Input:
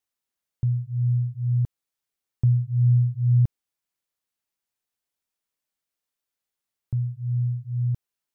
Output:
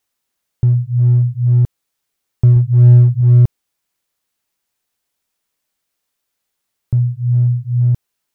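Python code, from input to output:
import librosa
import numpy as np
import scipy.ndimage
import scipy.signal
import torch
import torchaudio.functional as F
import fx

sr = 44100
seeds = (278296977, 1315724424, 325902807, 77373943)

p1 = fx.low_shelf(x, sr, hz=110.0, db=4.5, at=(2.56, 3.21))
p2 = np.clip(p1, -10.0 ** (-21.0 / 20.0), 10.0 ** (-21.0 / 20.0))
p3 = p1 + (p2 * 10.0 ** (-5.0 / 20.0))
y = p3 * 10.0 ** (7.5 / 20.0)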